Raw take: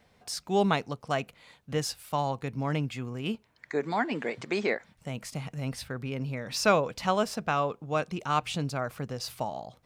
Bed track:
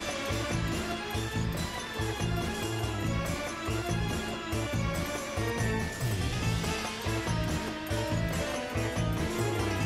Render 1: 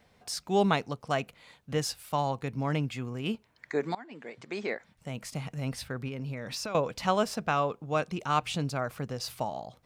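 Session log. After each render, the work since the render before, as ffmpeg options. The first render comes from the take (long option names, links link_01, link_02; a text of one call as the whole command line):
ffmpeg -i in.wav -filter_complex "[0:a]asettb=1/sr,asplit=3[link_01][link_02][link_03];[link_01]atrim=end=6.084[link_04];[link_02]atrim=start=6.08:end=6.75,asetpts=PTS-STARTPTS,afade=type=in:duration=0.004:curve=qsin,afade=type=out:start_time=0.666:duration=0.004:curve=qsin,acompressor=threshold=-32dB:ratio=12:attack=3.2:release=140:knee=1:detection=peak[link_05];[link_03]atrim=start=6.746[link_06];[link_04][link_05]acrossfade=duration=0.004:curve1=hsin:curve2=qsin[link_07];[link_07][link_06]acrossfade=duration=0.004:curve1=qsin:curve2=hsin,asplit=2[link_08][link_09];[link_08]atrim=end=3.95,asetpts=PTS-STARTPTS,afade=type=out:start_time=3.946:duration=0.004:curve=hsin:silence=0.0749894[link_10];[link_09]atrim=start=3.95,asetpts=PTS-STARTPTS,afade=type=in:duration=1.42:silence=0.0749894[link_11];[link_10][link_11]concat=n=2:v=0:a=1" out.wav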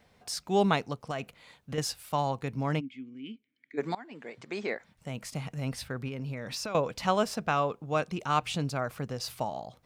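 ffmpeg -i in.wav -filter_complex "[0:a]asettb=1/sr,asplit=3[link_01][link_02][link_03];[link_01]atrim=end=1.014[link_04];[link_02]atrim=start=1.01:end=1.78,asetpts=PTS-STARTPTS,afade=type=in:duration=0.004:curve=qsin,afade=type=out:start_time=0.766:duration=0.004:curve=qsin,acompressor=threshold=-29dB:ratio=6:attack=3.2:release=140:knee=1:detection=peak[link_05];[link_03]atrim=start=1.776[link_06];[link_04][link_05]acrossfade=duration=0.004:curve1=hsin:curve2=qsin[link_07];[link_07][link_06]acrossfade=duration=0.004:curve1=qsin:curve2=hsin,asplit=3[link_08][link_09][link_10];[link_08]afade=type=out:start_time=2.79:duration=0.02[link_11];[link_09]asplit=3[link_12][link_13][link_14];[link_12]bandpass=frequency=270:width_type=q:width=8,volume=0dB[link_15];[link_13]bandpass=frequency=2290:width_type=q:width=8,volume=-6dB[link_16];[link_14]bandpass=frequency=3010:width_type=q:width=8,volume=-9dB[link_17];[link_15][link_16][link_17]amix=inputs=3:normalize=0,afade=type=in:start_time=2.79:duration=0.02,afade=type=out:start_time=3.77:duration=0.02[link_18];[link_10]afade=type=in:start_time=3.77:duration=0.02[link_19];[link_11][link_18][link_19]amix=inputs=3:normalize=0" out.wav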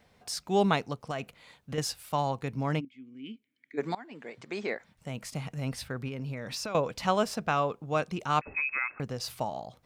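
ffmpeg -i in.wav -filter_complex "[0:a]asettb=1/sr,asplit=3[link_01][link_02][link_03];[link_01]atrim=end=8.414[link_04];[link_02]atrim=start=8.41:end=9,asetpts=PTS-STARTPTS,afade=type=in:duration=0.004:curve=qsin,afade=type=out:start_time=0.586:duration=0.004:curve=qsin,lowpass=frequency=2300:width_type=q:width=0.5098,lowpass=frequency=2300:width_type=q:width=0.6013,lowpass=frequency=2300:width_type=q:width=0.9,lowpass=frequency=2300:width_type=q:width=2.563,afreqshift=-2700[link_05];[link_03]atrim=start=8.996[link_06];[link_04][link_05]acrossfade=duration=0.004:curve1=hsin:curve2=qsin[link_07];[link_07][link_06]acrossfade=duration=0.004:curve1=qsin:curve2=hsin,asplit=2[link_08][link_09];[link_08]atrim=end=2.85,asetpts=PTS-STARTPTS,afade=type=out:start_time=2.846:duration=0.004:curve=hsin:silence=0.223872[link_10];[link_09]atrim=start=2.85,asetpts=PTS-STARTPTS,afade=type=in:duration=0.43:silence=0.223872[link_11];[link_10][link_11]concat=n=2:v=0:a=1" out.wav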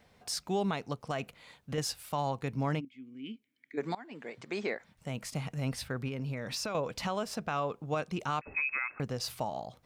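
ffmpeg -i in.wav -af "alimiter=limit=-22.5dB:level=0:latency=1:release=188" out.wav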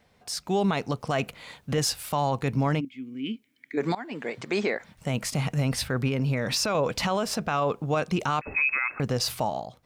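ffmpeg -i in.wav -af "dynaudnorm=framelen=210:gausssize=5:maxgain=10.5dB,alimiter=limit=-16.5dB:level=0:latency=1:release=24" out.wav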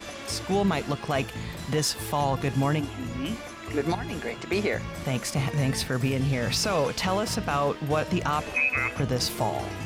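ffmpeg -i in.wav -i bed.wav -filter_complex "[1:a]volume=-4.5dB[link_01];[0:a][link_01]amix=inputs=2:normalize=0" out.wav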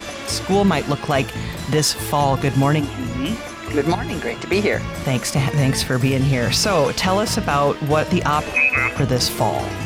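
ffmpeg -i in.wav -af "volume=8dB" out.wav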